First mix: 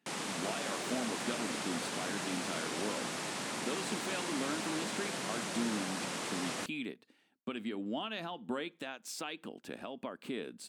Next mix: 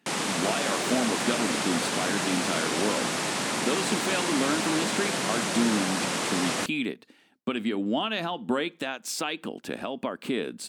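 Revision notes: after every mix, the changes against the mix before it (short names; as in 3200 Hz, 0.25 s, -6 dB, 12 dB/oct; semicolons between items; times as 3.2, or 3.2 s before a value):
speech +10.5 dB; background +10.0 dB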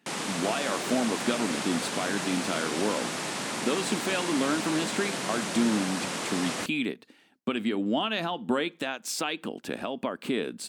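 background -4.0 dB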